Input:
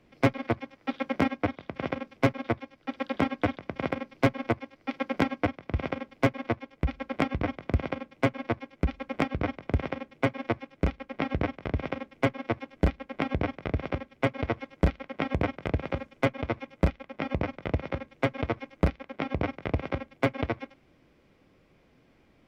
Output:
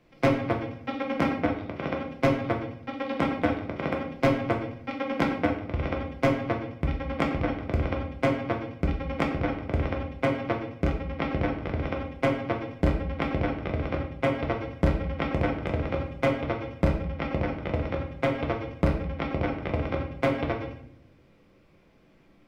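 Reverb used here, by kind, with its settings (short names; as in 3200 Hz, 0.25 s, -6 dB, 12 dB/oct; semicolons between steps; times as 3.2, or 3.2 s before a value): shoebox room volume 130 m³, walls mixed, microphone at 0.81 m; gain -1 dB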